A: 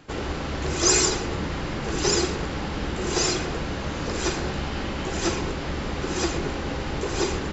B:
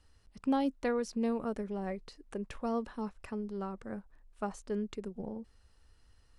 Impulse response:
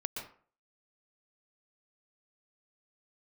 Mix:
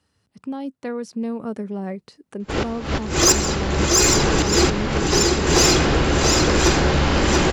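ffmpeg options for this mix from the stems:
-filter_complex "[0:a]acontrast=83,adelay=2400,volume=1,asplit=2[s0][s1];[s1]volume=0.631[s2];[1:a]highpass=f=120:w=0.5412,highpass=f=120:w=1.3066,lowshelf=f=170:g=11,alimiter=limit=0.0631:level=0:latency=1:release=296,volume=1.19,asplit=2[s3][s4];[s4]apad=whole_len=437703[s5];[s0][s5]sidechaincompress=threshold=0.00631:ratio=8:attack=16:release=109[s6];[s2]aecho=0:1:682:1[s7];[s6][s3][s7]amix=inputs=3:normalize=0,dynaudnorm=f=220:g=13:m=2.51,asoftclip=type=tanh:threshold=0.473"

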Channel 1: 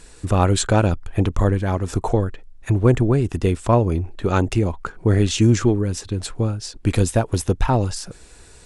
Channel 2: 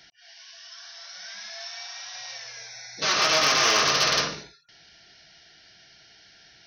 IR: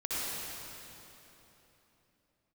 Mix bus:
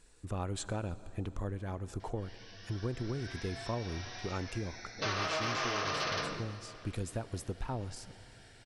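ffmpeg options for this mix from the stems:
-filter_complex "[0:a]volume=0.126,asplit=2[s0][s1];[s1]volume=0.0668[s2];[1:a]lowpass=f=1800:p=1,adelay=2000,volume=0.794,asplit=2[s3][s4];[s4]volume=0.0668[s5];[2:a]atrim=start_sample=2205[s6];[s2][s5]amix=inputs=2:normalize=0[s7];[s7][s6]afir=irnorm=-1:irlink=0[s8];[s0][s3][s8]amix=inputs=3:normalize=0,acompressor=threshold=0.0282:ratio=6"

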